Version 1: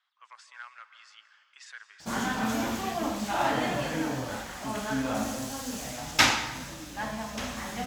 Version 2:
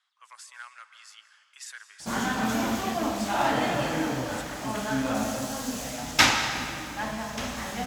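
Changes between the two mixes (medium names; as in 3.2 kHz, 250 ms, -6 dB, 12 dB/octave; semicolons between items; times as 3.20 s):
speech: remove distance through air 130 m; background: send on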